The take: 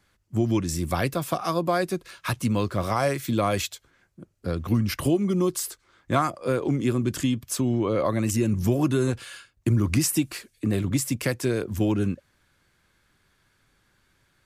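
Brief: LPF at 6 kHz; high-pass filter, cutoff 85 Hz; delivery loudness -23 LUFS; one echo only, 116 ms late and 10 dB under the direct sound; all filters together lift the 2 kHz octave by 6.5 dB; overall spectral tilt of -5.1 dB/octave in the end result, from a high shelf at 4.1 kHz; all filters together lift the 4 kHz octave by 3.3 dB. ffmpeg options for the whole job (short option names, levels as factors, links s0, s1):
-af "highpass=85,lowpass=6000,equalizer=f=2000:t=o:g=8,equalizer=f=4000:t=o:g=5.5,highshelf=f=4100:g=-4.5,aecho=1:1:116:0.316,volume=1.26"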